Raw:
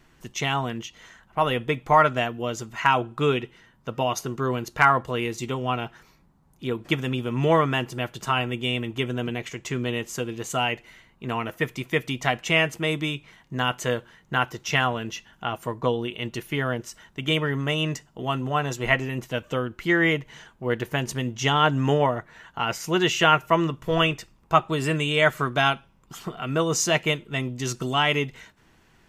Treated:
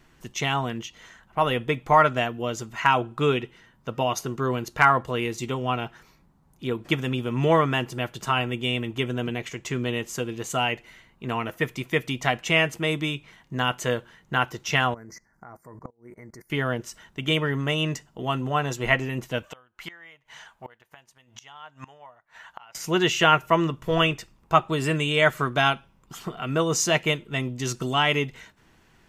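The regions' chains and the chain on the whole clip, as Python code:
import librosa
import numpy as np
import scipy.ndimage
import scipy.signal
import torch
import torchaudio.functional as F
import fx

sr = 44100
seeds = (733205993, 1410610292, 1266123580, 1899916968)

y = fx.chain(x, sr, fx.ellip_bandstop(low_hz=2100.0, high_hz=4700.0, order=3, stop_db=40),
    fx.level_steps(step_db=22),
    fx.gate_flip(shuts_db=-25.0, range_db=-27), at=(14.94, 16.5))
y = fx.chain(y, sr, fx.low_shelf_res(hz=530.0, db=-11.0, q=1.5),
    fx.gate_flip(shuts_db=-25.0, range_db=-25), at=(19.45, 22.75))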